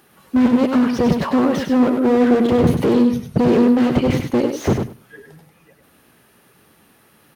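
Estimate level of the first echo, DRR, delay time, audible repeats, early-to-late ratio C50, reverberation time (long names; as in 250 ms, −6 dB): −6.0 dB, no reverb audible, 99 ms, 2, no reverb audible, no reverb audible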